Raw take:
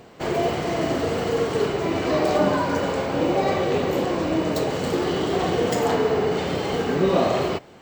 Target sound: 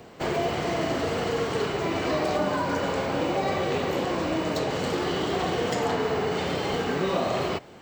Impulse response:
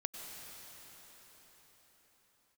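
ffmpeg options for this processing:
-filter_complex "[0:a]acrossover=split=270|680|7400[link_01][link_02][link_03][link_04];[link_01]acompressor=threshold=-32dB:ratio=4[link_05];[link_02]acompressor=threshold=-31dB:ratio=4[link_06];[link_03]acompressor=threshold=-27dB:ratio=4[link_07];[link_04]acompressor=threshold=-52dB:ratio=4[link_08];[link_05][link_06][link_07][link_08]amix=inputs=4:normalize=0"

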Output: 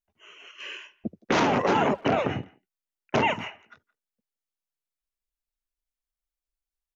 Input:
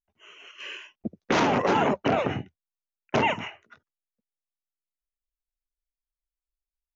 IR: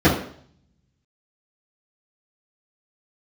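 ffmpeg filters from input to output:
-filter_complex "[0:a]asplit=2[link_01][link_02];[link_02]adelay=170,highpass=300,lowpass=3400,asoftclip=type=hard:threshold=-21dB,volume=-23dB[link_03];[link_01][link_03]amix=inputs=2:normalize=0"

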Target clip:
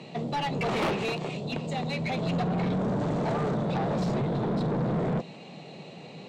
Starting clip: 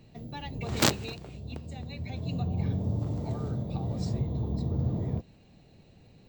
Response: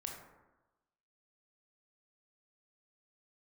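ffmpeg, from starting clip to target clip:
-filter_complex "[0:a]acrossover=split=3000[link_01][link_02];[link_02]acompressor=threshold=-53dB:ratio=4:attack=1:release=60[link_03];[link_01][link_03]amix=inputs=2:normalize=0,highpass=frequency=140:width=0.5412,highpass=frequency=140:width=1.3066,equalizer=frequency=160:width_type=q:width=4:gain=7,equalizer=frequency=290:width_type=q:width=4:gain=-3,equalizer=frequency=1600:width_type=q:width=4:gain=-9,equalizer=frequency=5100:width_type=q:width=4:gain=-4,lowpass=frequency=9500:width=0.5412,lowpass=frequency=9500:width=1.3066,asplit=2[link_04][link_05];[link_05]highpass=frequency=720:poles=1,volume=36dB,asoftclip=type=tanh:threshold=-11.5dB[link_06];[link_04][link_06]amix=inputs=2:normalize=0,lowpass=frequency=2500:poles=1,volume=-6dB,volume=-7.5dB"

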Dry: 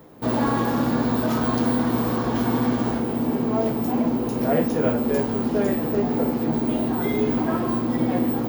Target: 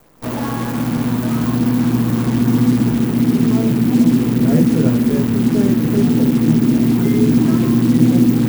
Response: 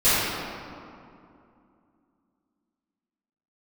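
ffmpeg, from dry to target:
-filter_complex "[0:a]acrossover=split=100|1800|6800[link_01][link_02][link_03][link_04];[link_02]asubboost=boost=12:cutoff=210[link_05];[link_04]asoftclip=type=tanh:threshold=-36dB[link_06];[link_01][link_05][link_03][link_06]amix=inputs=4:normalize=0,acrusher=bits=5:dc=4:mix=0:aa=0.000001,equalizer=frequency=4000:width_type=o:width=1.6:gain=-3,volume=-1dB"

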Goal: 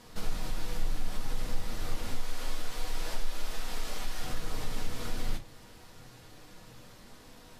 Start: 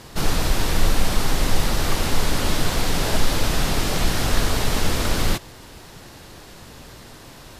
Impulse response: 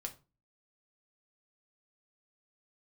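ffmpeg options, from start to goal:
-filter_complex "[0:a]asettb=1/sr,asplit=3[link_01][link_02][link_03];[link_01]atrim=end=2.144[link_04];[link_02]atrim=start=2.14:end=4.23,asetpts=PTS-STARTPTS,afade=type=in:duration=0.004:curve=qsin,afade=type=out:start_time=2.086:duration=0.004:curve=qsin,equalizer=frequency=110:width_type=o:width=2.6:gain=-12.5[link_05];[link_03]atrim=start=4.226[link_06];[link_04][link_05]acrossfade=duration=0.004:curve1=hsin:curve2=qsin[link_07];[link_07][link_06]acrossfade=duration=0.004:curve1=qsin:curve2=hsin,acompressor=threshold=-24dB:ratio=2.5,flanger=delay=4.2:depth=4.9:regen=-63:speed=0.27:shape=triangular[link_08];[1:a]atrim=start_sample=2205[link_09];[link_08][link_09]afir=irnorm=-1:irlink=0,volume=-4.5dB"

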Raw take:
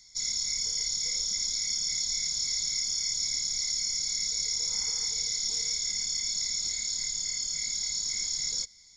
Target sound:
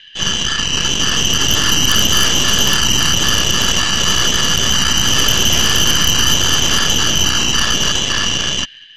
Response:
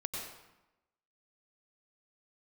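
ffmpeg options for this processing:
-filter_complex "[0:a]afreqshift=-470,asplit=2[link_01][link_02];[1:a]atrim=start_sample=2205,asetrate=74970,aresample=44100,adelay=127[link_03];[link_02][link_03]afir=irnorm=-1:irlink=0,volume=-17.5dB[link_04];[link_01][link_04]amix=inputs=2:normalize=0,dynaudnorm=framelen=220:gausssize=11:maxgain=6dB,asuperpass=centerf=2400:order=8:qfactor=2,aeval=exprs='0.0237*(cos(1*acos(clip(val(0)/0.0237,-1,1)))-cos(1*PI/2))+0.00841*(cos(6*acos(clip(val(0)/0.0237,-1,1)))-cos(6*PI/2))':channel_layout=same,alimiter=level_in=34.5dB:limit=-1dB:release=50:level=0:latency=1,volume=-1dB"

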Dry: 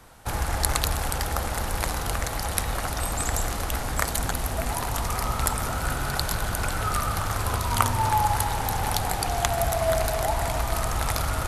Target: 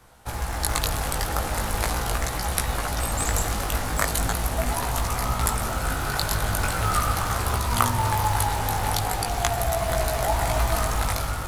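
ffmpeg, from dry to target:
ffmpeg -i in.wav -af "acrusher=bits=6:mode=log:mix=0:aa=0.000001,flanger=delay=16:depth=3.7:speed=0.4,dynaudnorm=framelen=200:gausssize=7:maxgain=6.5dB" out.wav

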